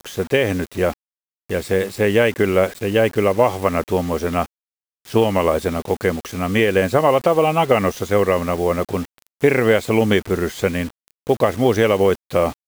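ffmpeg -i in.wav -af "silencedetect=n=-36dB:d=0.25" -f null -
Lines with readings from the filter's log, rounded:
silence_start: 0.94
silence_end: 1.49 | silence_duration: 0.56
silence_start: 4.46
silence_end: 5.05 | silence_duration: 0.59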